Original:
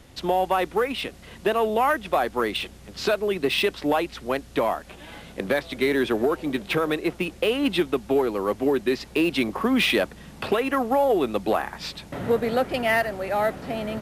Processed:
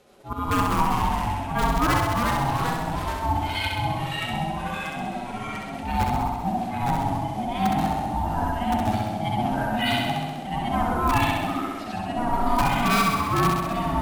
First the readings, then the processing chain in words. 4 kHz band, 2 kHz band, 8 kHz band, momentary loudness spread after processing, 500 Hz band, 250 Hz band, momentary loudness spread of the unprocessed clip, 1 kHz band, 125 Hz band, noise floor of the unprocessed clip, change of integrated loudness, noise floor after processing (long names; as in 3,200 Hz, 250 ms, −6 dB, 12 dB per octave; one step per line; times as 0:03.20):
−2.0 dB, −1.5 dB, +4.0 dB, 8 LU, −9.0 dB, −0.5 dB, 9 LU, +4.5 dB, +11.0 dB, −46 dBFS, −0.5 dB, −33 dBFS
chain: harmonic-percussive split with one part muted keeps harmonic
noise gate −44 dBFS, range −6 dB
low-shelf EQ 110 Hz −2.5 dB
volume swells 196 ms
in parallel at −4.5 dB: wrap-around overflow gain 17 dB
on the sum: delay with pitch and tempo change per echo 132 ms, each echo −2 semitones, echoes 3
ring modulation 480 Hz
on a send: flutter between parallel walls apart 11.2 metres, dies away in 1.2 s